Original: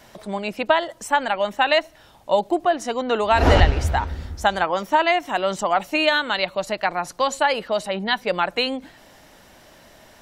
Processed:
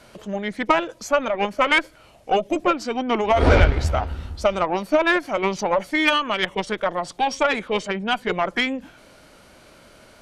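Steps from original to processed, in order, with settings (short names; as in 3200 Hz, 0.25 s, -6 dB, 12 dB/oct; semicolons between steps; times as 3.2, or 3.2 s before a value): formant shift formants -4 st; added harmonics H 8 -27 dB, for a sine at -1.5 dBFS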